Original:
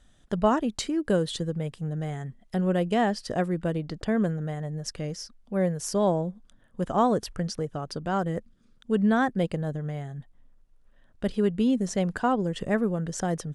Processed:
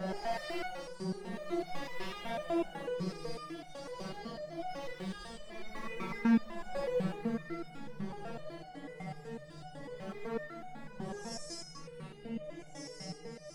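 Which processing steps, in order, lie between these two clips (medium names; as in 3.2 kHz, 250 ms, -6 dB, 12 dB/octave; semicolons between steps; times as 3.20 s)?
dynamic bell 770 Hz, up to +5 dB, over -37 dBFS, Q 1.4; wavefolder -21.5 dBFS; multi-head delay 197 ms, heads first and third, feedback 44%, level -7 dB; Paulstretch 7.4×, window 0.10 s, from 3.33 s; resonator arpeggio 8 Hz 190–730 Hz; trim +3.5 dB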